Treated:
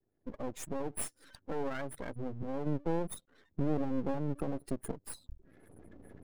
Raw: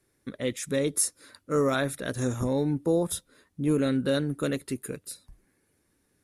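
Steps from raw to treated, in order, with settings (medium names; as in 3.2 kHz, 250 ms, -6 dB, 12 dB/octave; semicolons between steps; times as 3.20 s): recorder AGC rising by 30 dB/s; spectral gate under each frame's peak -10 dB strong; 2.66–4.92 s: dynamic bell 220 Hz, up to +5 dB, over -38 dBFS, Q 0.97; half-wave rectifier; trim -6.5 dB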